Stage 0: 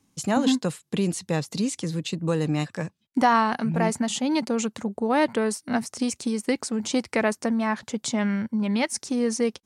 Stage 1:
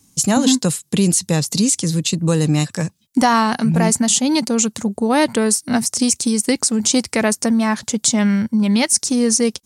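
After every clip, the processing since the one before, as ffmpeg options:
-filter_complex "[0:a]bass=f=250:g=6,treble=f=4000:g=14,asplit=2[s0][s1];[s1]alimiter=limit=0.266:level=0:latency=1:release=107,volume=1[s2];[s0][s2]amix=inputs=2:normalize=0,volume=0.891"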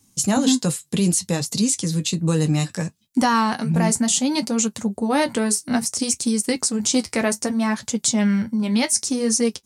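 -af "flanger=delay=8.4:depth=4.7:regen=-47:speed=0.63:shape=triangular"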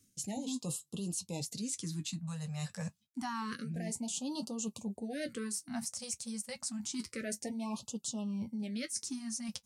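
-af "areverse,acompressor=threshold=0.0398:ratio=8,areverse,afftfilt=real='re*(1-between(b*sr/1024,310*pow(1900/310,0.5+0.5*sin(2*PI*0.28*pts/sr))/1.41,310*pow(1900/310,0.5+0.5*sin(2*PI*0.28*pts/sr))*1.41))':imag='im*(1-between(b*sr/1024,310*pow(1900/310,0.5+0.5*sin(2*PI*0.28*pts/sr))/1.41,310*pow(1900/310,0.5+0.5*sin(2*PI*0.28*pts/sr))*1.41))':win_size=1024:overlap=0.75,volume=0.422"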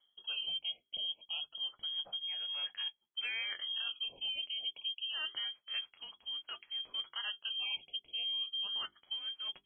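-filter_complex "[0:a]acrossover=split=2600[s0][s1];[s1]acompressor=threshold=0.00501:ratio=4:attack=1:release=60[s2];[s0][s2]amix=inputs=2:normalize=0,lowpass=f=2900:t=q:w=0.5098,lowpass=f=2900:t=q:w=0.6013,lowpass=f=2900:t=q:w=0.9,lowpass=f=2900:t=q:w=2.563,afreqshift=-3400,bandreject=f=50:t=h:w=6,bandreject=f=100:t=h:w=6,bandreject=f=150:t=h:w=6,bandreject=f=200:t=h:w=6,bandreject=f=250:t=h:w=6,bandreject=f=300:t=h:w=6,bandreject=f=350:t=h:w=6,bandreject=f=400:t=h:w=6"

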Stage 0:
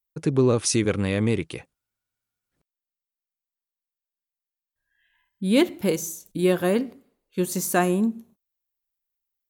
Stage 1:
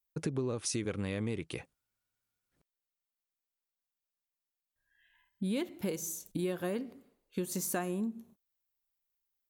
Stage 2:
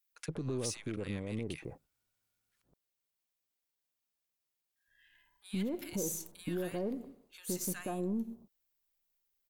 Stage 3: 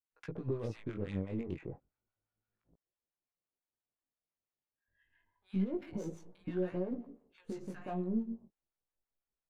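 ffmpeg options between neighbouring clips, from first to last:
-af "acompressor=threshold=0.0282:ratio=5,volume=0.841"
-filter_complex "[0:a]aeval=exprs='if(lt(val(0),0),0.708*val(0),val(0))':c=same,alimiter=level_in=2.66:limit=0.0631:level=0:latency=1:release=119,volume=0.376,acrossover=split=1200[s0][s1];[s0]adelay=120[s2];[s2][s1]amix=inputs=2:normalize=0,volume=1.78"
-filter_complex "[0:a]acrossover=split=720[s0][s1];[s0]aeval=exprs='val(0)*(1-0.7/2+0.7/2*cos(2*PI*5.9*n/s))':c=same[s2];[s1]aeval=exprs='val(0)*(1-0.7/2-0.7/2*cos(2*PI*5.9*n/s))':c=same[s3];[s2][s3]amix=inputs=2:normalize=0,adynamicsmooth=sensitivity=5.5:basefreq=1400,flanger=delay=16:depth=6.1:speed=0.3,volume=2"

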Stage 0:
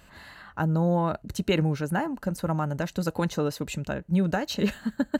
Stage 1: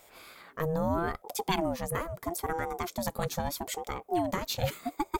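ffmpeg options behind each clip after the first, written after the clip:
-af "aemphasis=mode=production:type=50fm,aeval=exprs='val(0)*sin(2*PI*480*n/s+480*0.35/0.77*sin(2*PI*0.77*n/s))':c=same,volume=0.75"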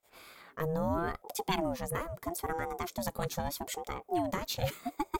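-af "agate=range=0.0501:threshold=0.00158:ratio=16:detection=peak,volume=0.75"

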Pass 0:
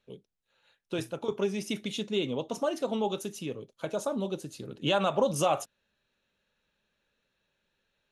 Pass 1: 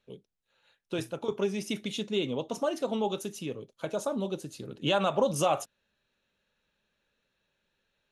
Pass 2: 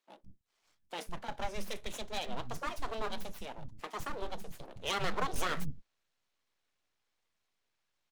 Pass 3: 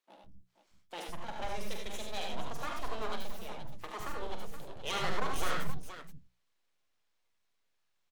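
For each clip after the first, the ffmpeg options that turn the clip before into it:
-af anull
-filter_complex "[0:a]aeval=exprs='abs(val(0))':c=same,acrossover=split=230[s0][s1];[s0]adelay=160[s2];[s2][s1]amix=inputs=2:normalize=0,volume=0.668"
-af "bandreject=f=60:t=h:w=6,bandreject=f=120:t=h:w=6,bandreject=f=180:t=h:w=6,aecho=1:1:46|74|89|100|473:0.398|0.531|0.422|0.335|0.282,volume=0.75"

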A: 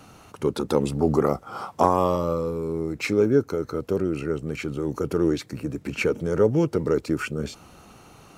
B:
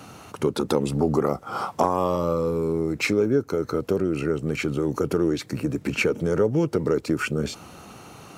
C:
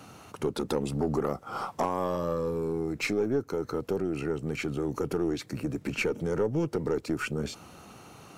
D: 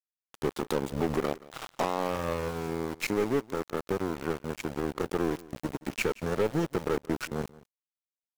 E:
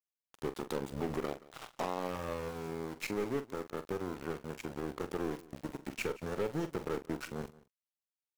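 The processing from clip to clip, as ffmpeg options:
-af "highpass=77,acompressor=threshold=0.0501:ratio=2.5,volume=1.88"
-af "aeval=exprs='0.562*(cos(1*acos(clip(val(0)/0.562,-1,1)))-cos(1*PI/2))+0.0224*(cos(6*acos(clip(val(0)/0.562,-1,1)))-cos(6*PI/2))':c=same,asoftclip=type=tanh:threshold=0.282,volume=0.531"
-af "aeval=exprs='0.15*(cos(1*acos(clip(val(0)/0.15,-1,1)))-cos(1*PI/2))+0.0168*(cos(7*acos(clip(val(0)/0.15,-1,1)))-cos(7*PI/2))':c=same,aeval=exprs='val(0)*gte(abs(val(0)),0.0178)':c=same,aecho=1:1:176:0.0944"
-filter_complex "[0:a]asplit=2[s0][s1];[s1]adelay=44,volume=0.266[s2];[s0][s2]amix=inputs=2:normalize=0,volume=0.422"

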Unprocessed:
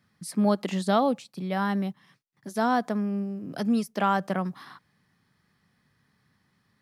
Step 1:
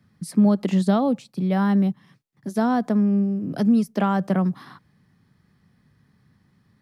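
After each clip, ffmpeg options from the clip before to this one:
-filter_complex "[0:a]lowshelf=f=440:g=11.5,acrossover=split=180[s0][s1];[s1]acompressor=threshold=0.126:ratio=4[s2];[s0][s2]amix=inputs=2:normalize=0"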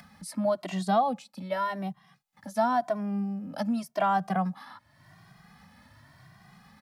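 -filter_complex "[0:a]acompressor=mode=upward:threshold=0.0251:ratio=2.5,lowshelf=f=540:t=q:w=3:g=-7.5,asplit=2[s0][s1];[s1]adelay=2,afreqshift=0.9[s2];[s0][s2]amix=inputs=2:normalize=1"

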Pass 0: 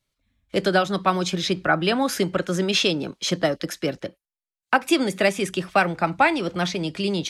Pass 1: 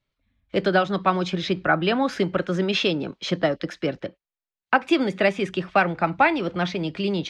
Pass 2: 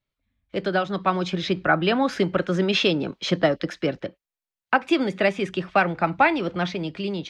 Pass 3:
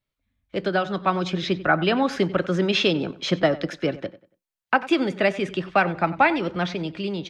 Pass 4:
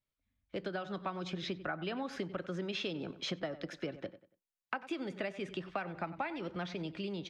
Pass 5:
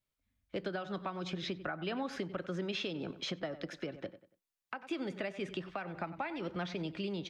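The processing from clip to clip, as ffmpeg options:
-af "lowpass=3400"
-af "dynaudnorm=f=290:g=7:m=3.76,volume=0.562"
-filter_complex "[0:a]asplit=2[s0][s1];[s1]adelay=94,lowpass=f=4300:p=1,volume=0.141,asplit=2[s2][s3];[s3]adelay=94,lowpass=f=4300:p=1,volume=0.31,asplit=2[s4][s5];[s5]adelay=94,lowpass=f=4300:p=1,volume=0.31[s6];[s0][s2][s4][s6]amix=inputs=4:normalize=0"
-af "acompressor=threshold=0.0447:ratio=6,volume=0.398"
-af "alimiter=level_in=1.58:limit=0.0631:level=0:latency=1:release=236,volume=0.631,volume=1.19"

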